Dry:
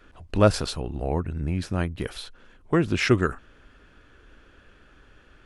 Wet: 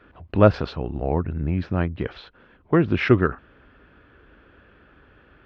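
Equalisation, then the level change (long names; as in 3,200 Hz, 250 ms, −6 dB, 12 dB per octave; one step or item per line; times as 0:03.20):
Gaussian smoothing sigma 2.7 samples
high-pass filter 58 Hz
+3.5 dB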